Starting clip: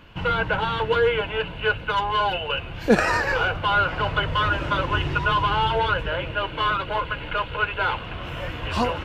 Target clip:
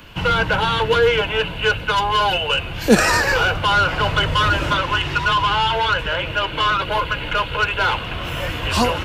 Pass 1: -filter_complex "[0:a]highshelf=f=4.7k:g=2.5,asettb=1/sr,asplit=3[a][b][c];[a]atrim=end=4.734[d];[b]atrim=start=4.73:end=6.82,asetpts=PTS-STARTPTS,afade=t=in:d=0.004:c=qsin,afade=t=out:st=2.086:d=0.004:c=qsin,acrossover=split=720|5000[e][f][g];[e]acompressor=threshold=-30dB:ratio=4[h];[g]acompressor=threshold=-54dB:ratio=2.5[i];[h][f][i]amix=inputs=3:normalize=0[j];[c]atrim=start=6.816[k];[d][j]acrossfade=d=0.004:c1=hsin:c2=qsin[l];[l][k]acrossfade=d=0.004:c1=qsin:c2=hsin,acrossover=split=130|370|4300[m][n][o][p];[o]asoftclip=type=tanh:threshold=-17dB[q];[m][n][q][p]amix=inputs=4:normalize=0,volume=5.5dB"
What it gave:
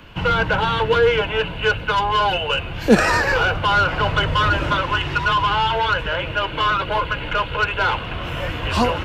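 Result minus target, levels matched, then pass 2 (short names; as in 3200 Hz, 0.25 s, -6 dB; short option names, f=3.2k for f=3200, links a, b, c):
8000 Hz band -6.0 dB
-filter_complex "[0:a]highshelf=f=4.7k:g=13.5,asettb=1/sr,asplit=3[a][b][c];[a]atrim=end=4.734[d];[b]atrim=start=4.73:end=6.82,asetpts=PTS-STARTPTS,afade=t=in:d=0.004:c=qsin,afade=t=out:st=2.086:d=0.004:c=qsin,acrossover=split=720|5000[e][f][g];[e]acompressor=threshold=-30dB:ratio=4[h];[g]acompressor=threshold=-54dB:ratio=2.5[i];[h][f][i]amix=inputs=3:normalize=0[j];[c]atrim=start=6.816[k];[d][j]acrossfade=d=0.004:c1=hsin:c2=qsin[l];[l][k]acrossfade=d=0.004:c1=qsin:c2=hsin,acrossover=split=130|370|4300[m][n][o][p];[o]asoftclip=type=tanh:threshold=-17dB[q];[m][n][q][p]amix=inputs=4:normalize=0,volume=5.5dB"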